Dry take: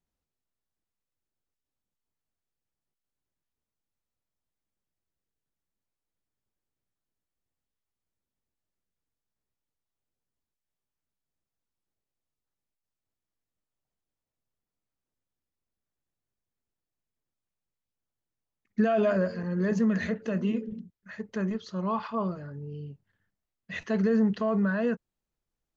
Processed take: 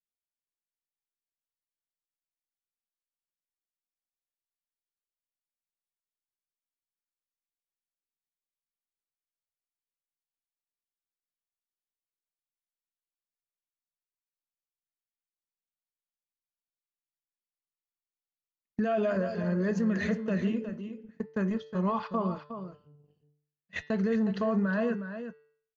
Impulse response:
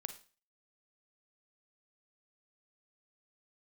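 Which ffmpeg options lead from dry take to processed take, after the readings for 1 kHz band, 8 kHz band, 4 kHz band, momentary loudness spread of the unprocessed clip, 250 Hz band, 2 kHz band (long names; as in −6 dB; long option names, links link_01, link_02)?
−1.0 dB, can't be measured, −1.5 dB, 16 LU, −2.0 dB, −1.0 dB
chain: -filter_complex "[0:a]agate=range=-29dB:threshold=-35dB:ratio=16:detection=peak,bandreject=frequency=147.8:width_type=h:width=4,bandreject=frequency=295.6:width_type=h:width=4,bandreject=frequency=443.4:width_type=h:width=4,bandreject=frequency=591.2:width_type=h:width=4,bandreject=frequency=739:width_type=h:width=4,bandreject=frequency=886.8:width_type=h:width=4,bandreject=frequency=1034.6:width_type=h:width=4,bandreject=frequency=1182.4:width_type=h:width=4,bandreject=frequency=1330.2:width_type=h:width=4,bandreject=frequency=1478:width_type=h:width=4,bandreject=frequency=1625.8:width_type=h:width=4,bandreject=frequency=1773.6:width_type=h:width=4,bandreject=frequency=1921.4:width_type=h:width=4,bandreject=frequency=2069.2:width_type=h:width=4,bandreject=frequency=2217:width_type=h:width=4,bandreject=frequency=2364.8:width_type=h:width=4,bandreject=frequency=2512.6:width_type=h:width=4,bandreject=frequency=2660.4:width_type=h:width=4,bandreject=frequency=2808.2:width_type=h:width=4,bandreject=frequency=2956:width_type=h:width=4,bandreject=frequency=3103.8:width_type=h:width=4,bandreject=frequency=3251.6:width_type=h:width=4,bandreject=frequency=3399.4:width_type=h:width=4,bandreject=frequency=3547.2:width_type=h:width=4,bandreject=frequency=3695:width_type=h:width=4,bandreject=frequency=3842.8:width_type=h:width=4,bandreject=frequency=3990.6:width_type=h:width=4,bandreject=frequency=4138.4:width_type=h:width=4,bandreject=frequency=4286.2:width_type=h:width=4,bandreject=frequency=4434:width_type=h:width=4,bandreject=frequency=4581.8:width_type=h:width=4,bandreject=frequency=4729.6:width_type=h:width=4,bandreject=frequency=4877.4:width_type=h:width=4,bandreject=frequency=5025.2:width_type=h:width=4,bandreject=frequency=5173:width_type=h:width=4,bandreject=frequency=5320.8:width_type=h:width=4,bandreject=frequency=5468.6:width_type=h:width=4,alimiter=level_in=0.5dB:limit=-24dB:level=0:latency=1:release=275,volume=-0.5dB,asplit=2[link_01][link_02];[link_02]aecho=0:1:363:0.316[link_03];[link_01][link_03]amix=inputs=2:normalize=0,volume=3.5dB"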